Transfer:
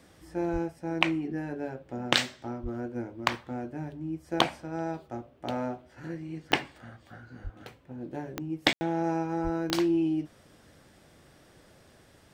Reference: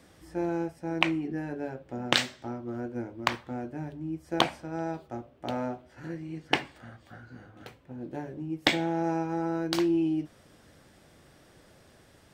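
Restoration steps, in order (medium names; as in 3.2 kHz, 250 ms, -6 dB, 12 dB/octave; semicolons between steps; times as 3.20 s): de-click; de-plosive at 0.52/2.62/7.43/9.43 s; room tone fill 8.73–8.81 s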